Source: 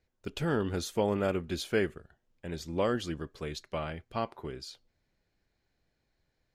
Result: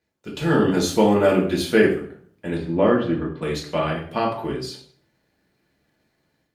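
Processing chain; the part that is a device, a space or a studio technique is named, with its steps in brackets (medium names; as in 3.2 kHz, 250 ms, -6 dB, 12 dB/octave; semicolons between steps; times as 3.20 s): 2.57–3.42 s: distance through air 470 m; far-field microphone of a smart speaker (reverberation RT60 0.55 s, pre-delay 3 ms, DRR -2.5 dB; high-pass 120 Hz 12 dB/octave; level rider gain up to 8.5 dB; Opus 48 kbps 48 kHz)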